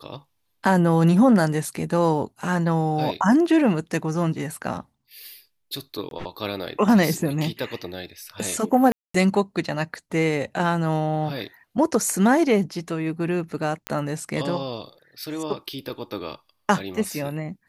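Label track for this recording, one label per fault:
6.090000	6.110000	drop-out 22 ms
8.920000	9.140000	drop-out 224 ms
13.870000	13.870000	click −11 dBFS

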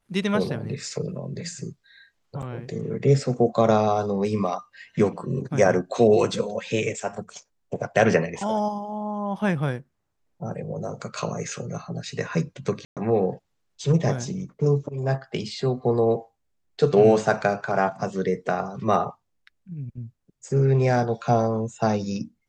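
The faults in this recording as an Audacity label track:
2.420000	2.430000	drop-out 6.3 ms
12.850000	12.970000	drop-out 117 ms

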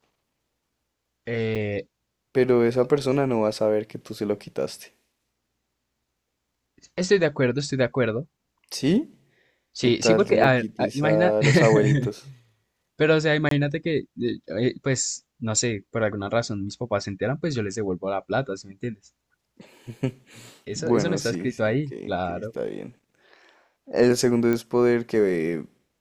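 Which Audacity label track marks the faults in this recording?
1.550000	1.560000	drop-out 6.6 ms
10.440000	10.440000	drop-out 2.9 ms
13.490000	13.510000	drop-out 23 ms
24.530000	24.530000	click −13 dBFS

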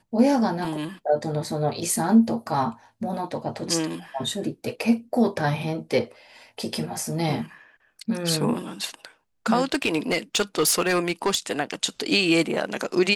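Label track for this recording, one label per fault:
0.650000	0.650000	drop-out 2.5 ms
9.640000	11.520000	clipping −15.5 dBFS

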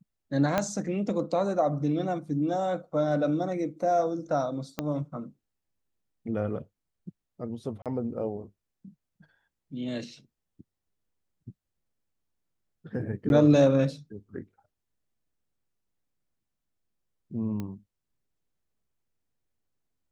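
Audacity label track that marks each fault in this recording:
0.580000	0.580000	click −11 dBFS
4.790000	4.790000	click −15 dBFS
7.820000	7.860000	drop-out 37 ms
13.290000	13.300000	drop-out 11 ms
17.600000	17.600000	click −22 dBFS

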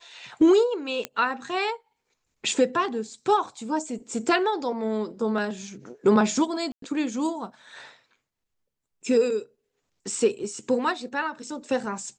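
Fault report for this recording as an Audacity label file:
1.050000	1.050000	click −13 dBFS
6.720000	6.820000	drop-out 103 ms

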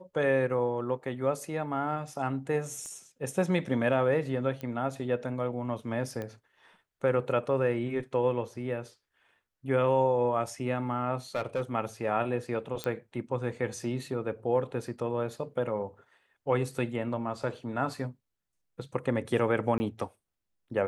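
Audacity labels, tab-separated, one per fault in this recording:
2.860000	2.860000	click −32 dBFS
4.610000	4.610000	click −24 dBFS
6.220000	6.220000	click −24 dBFS
11.350000	11.620000	clipping −25.5 dBFS
12.840000	12.840000	click −16 dBFS
19.780000	19.800000	drop-out 20 ms

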